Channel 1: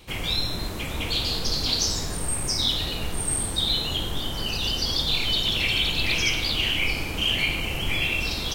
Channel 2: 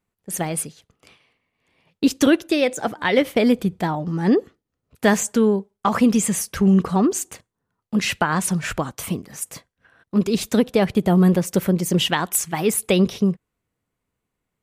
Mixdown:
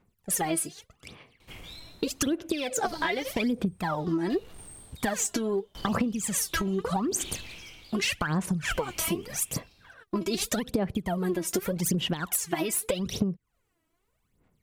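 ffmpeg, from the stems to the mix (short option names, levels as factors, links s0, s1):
-filter_complex "[0:a]asoftclip=type=tanh:threshold=0.0708,aeval=exprs='val(0)*pow(10,-28*if(lt(mod(0.69*n/s,1),2*abs(0.69)/1000),1-mod(0.69*n/s,1)/(2*abs(0.69)/1000),(mod(0.69*n/s,1)-2*abs(0.69)/1000)/(1-2*abs(0.69)/1000))/20)':c=same,adelay=1400,volume=0.316[s0];[1:a]acompressor=threshold=0.0891:ratio=6,aphaser=in_gain=1:out_gain=1:delay=3.1:decay=0.77:speed=0.83:type=sinusoidal,volume=1.06[s1];[s0][s1]amix=inputs=2:normalize=0,acompressor=threshold=0.0631:ratio=16"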